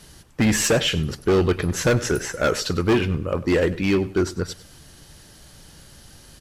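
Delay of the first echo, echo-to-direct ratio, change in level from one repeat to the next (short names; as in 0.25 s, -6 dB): 98 ms, -17.0 dB, -11.5 dB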